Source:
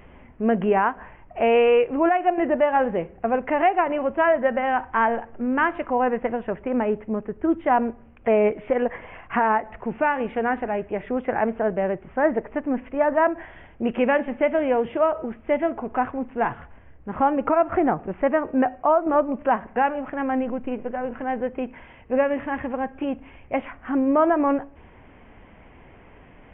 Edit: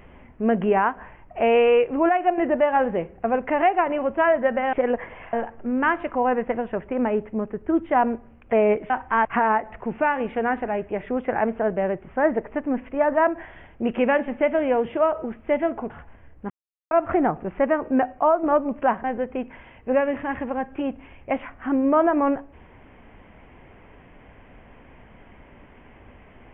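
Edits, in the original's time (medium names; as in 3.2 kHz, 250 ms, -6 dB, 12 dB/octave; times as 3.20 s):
4.73–5.08 s: swap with 8.65–9.25 s
15.90–16.53 s: delete
17.13–17.54 s: mute
19.67–21.27 s: delete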